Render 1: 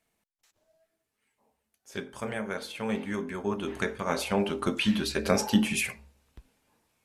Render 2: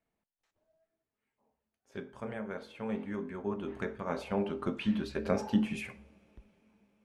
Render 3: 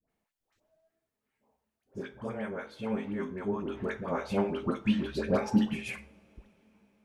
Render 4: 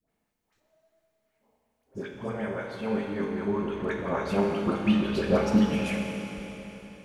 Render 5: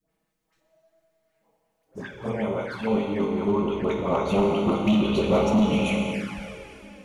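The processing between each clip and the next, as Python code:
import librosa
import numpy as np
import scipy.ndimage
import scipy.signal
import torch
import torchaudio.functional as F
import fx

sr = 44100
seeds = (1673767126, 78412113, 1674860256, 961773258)

y1 = fx.lowpass(x, sr, hz=1200.0, slope=6)
y1 = fx.rev_double_slope(y1, sr, seeds[0], early_s=0.52, late_s=4.9, knee_db=-18, drr_db=17.5)
y1 = y1 * 10.0 ** (-4.5 / 20.0)
y2 = fx.dispersion(y1, sr, late='highs', ms=92.0, hz=900.0)
y2 = y2 * 10.0 ** (3.0 / 20.0)
y3 = fx.rev_schroeder(y2, sr, rt60_s=3.8, comb_ms=26, drr_db=1.0)
y3 = y3 * 10.0 ** (2.5 / 20.0)
y4 = np.clip(y3, -10.0 ** (-21.5 / 20.0), 10.0 ** (-21.5 / 20.0))
y4 = fx.dynamic_eq(y4, sr, hz=1300.0, q=0.77, threshold_db=-46.0, ratio=4.0, max_db=7)
y4 = fx.env_flanger(y4, sr, rest_ms=6.3, full_db=-26.5)
y4 = y4 * 10.0 ** (5.0 / 20.0)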